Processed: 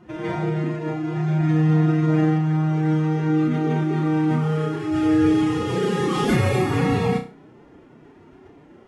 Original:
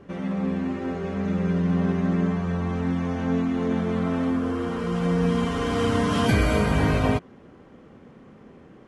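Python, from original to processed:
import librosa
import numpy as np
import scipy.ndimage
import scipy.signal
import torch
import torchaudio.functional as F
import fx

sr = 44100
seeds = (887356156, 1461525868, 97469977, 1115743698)

y = fx.pitch_keep_formants(x, sr, semitones=10.0)
y = fx.room_flutter(y, sr, wall_m=5.5, rt60_s=0.32)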